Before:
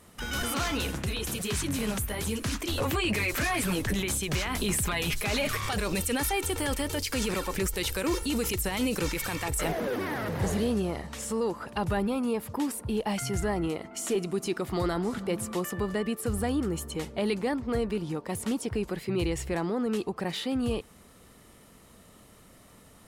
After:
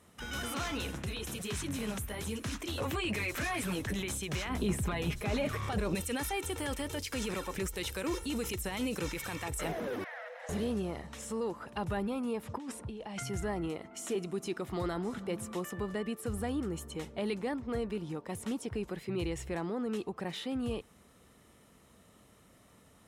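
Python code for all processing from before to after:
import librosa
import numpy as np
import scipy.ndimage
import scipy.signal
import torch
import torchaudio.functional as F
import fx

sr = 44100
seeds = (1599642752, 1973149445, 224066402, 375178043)

y = fx.chain(x, sr, fx.tilt_shelf(db=5.5, hz=1200.0),
    fx.quant_float(bits=8), at=(4.49, 5.95))
y = fx.chain(y, sr, fx.cheby_ripple_highpass(hz=480.0, ripple_db=9),
    fx.air_absorb(metres=50.0), at=(10.04, 10.49))
y = fx.chain(y, sr, fx.lowpass(hz=7700.0, slope=12),
    fx.over_compress(threshold_db=-34.0, ratio=-1.0), at=(12.43, 13.23))
y = scipy.signal.sosfilt(scipy.signal.butter(2, 43.0, 'highpass', fs=sr, output='sos'), y)
y = fx.high_shelf(y, sr, hz=12000.0, db=-7.0)
y = fx.notch(y, sr, hz=4600.0, q=11.0)
y = F.gain(torch.from_numpy(y), -6.0).numpy()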